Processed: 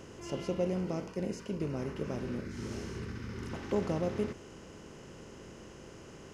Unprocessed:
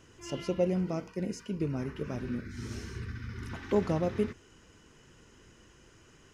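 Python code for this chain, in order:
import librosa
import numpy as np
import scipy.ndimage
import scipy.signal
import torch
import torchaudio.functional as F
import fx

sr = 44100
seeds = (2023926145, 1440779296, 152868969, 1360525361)

y = fx.bin_compress(x, sr, power=0.6)
y = F.gain(torch.from_numpy(y), -5.5).numpy()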